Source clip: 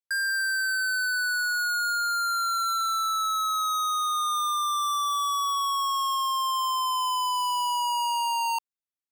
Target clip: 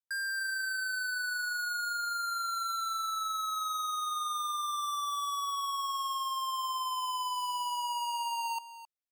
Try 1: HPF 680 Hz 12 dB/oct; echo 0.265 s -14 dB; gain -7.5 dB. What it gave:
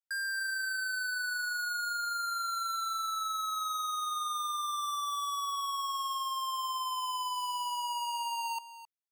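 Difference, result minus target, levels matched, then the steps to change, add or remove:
500 Hz band -3.0 dB
remove: HPF 680 Hz 12 dB/oct

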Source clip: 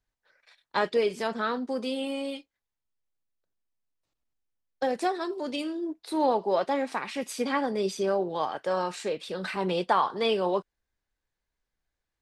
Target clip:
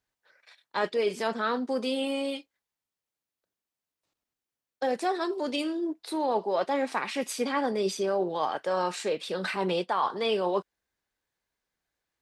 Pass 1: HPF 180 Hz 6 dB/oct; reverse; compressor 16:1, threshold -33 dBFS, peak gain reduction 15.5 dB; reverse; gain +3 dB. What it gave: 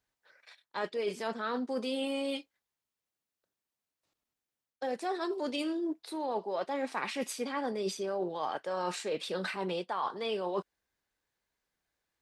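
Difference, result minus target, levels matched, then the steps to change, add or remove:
compressor: peak gain reduction +7 dB
change: compressor 16:1, threshold -25.5 dBFS, peak gain reduction 8.5 dB

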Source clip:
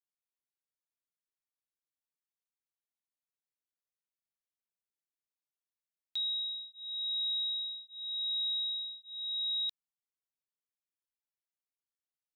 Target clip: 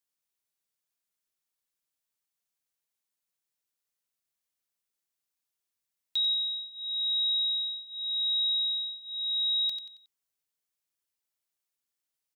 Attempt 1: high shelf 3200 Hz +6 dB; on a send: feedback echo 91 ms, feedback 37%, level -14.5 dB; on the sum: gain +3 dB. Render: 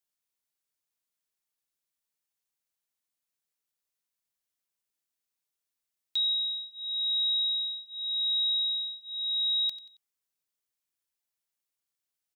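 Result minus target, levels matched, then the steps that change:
echo-to-direct -7 dB
change: feedback echo 91 ms, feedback 37%, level -7.5 dB

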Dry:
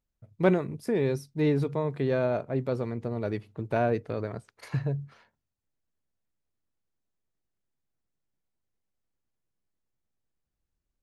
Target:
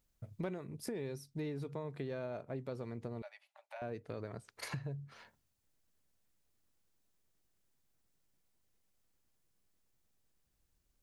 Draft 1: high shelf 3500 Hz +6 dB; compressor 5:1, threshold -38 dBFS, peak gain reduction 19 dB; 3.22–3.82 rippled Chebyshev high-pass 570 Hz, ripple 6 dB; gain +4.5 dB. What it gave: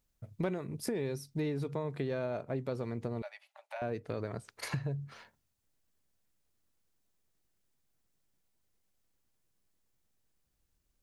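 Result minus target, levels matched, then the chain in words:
compressor: peak gain reduction -6 dB
high shelf 3500 Hz +6 dB; compressor 5:1, threshold -45.5 dBFS, peak gain reduction 25 dB; 3.22–3.82 rippled Chebyshev high-pass 570 Hz, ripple 6 dB; gain +4.5 dB

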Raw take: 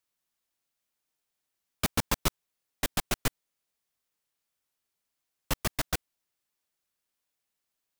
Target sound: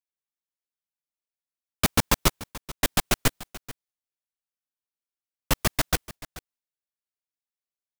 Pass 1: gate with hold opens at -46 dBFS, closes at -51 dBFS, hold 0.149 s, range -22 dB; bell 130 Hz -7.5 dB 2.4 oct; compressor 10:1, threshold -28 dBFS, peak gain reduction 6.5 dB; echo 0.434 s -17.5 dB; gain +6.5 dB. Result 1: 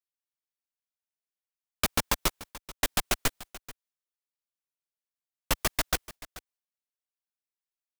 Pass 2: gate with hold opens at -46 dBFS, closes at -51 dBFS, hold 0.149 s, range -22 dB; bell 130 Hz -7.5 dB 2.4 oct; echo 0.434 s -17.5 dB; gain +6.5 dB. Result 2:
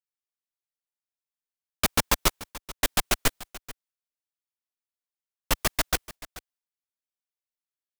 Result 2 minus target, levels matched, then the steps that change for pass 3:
125 Hz band -5.5 dB
remove: bell 130 Hz -7.5 dB 2.4 oct

